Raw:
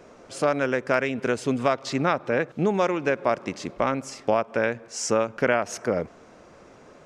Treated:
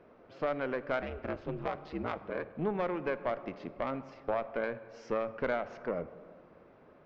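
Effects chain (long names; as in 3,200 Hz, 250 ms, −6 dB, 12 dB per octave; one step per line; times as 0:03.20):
Gaussian smoothing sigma 2.7 samples
tube saturation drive 12 dB, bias 0.65
0:01.01–0:02.54: ring modulation 210 Hz → 35 Hz
on a send: convolution reverb RT60 1.9 s, pre-delay 3 ms, DRR 13.5 dB
on the sum: level −5.5 dB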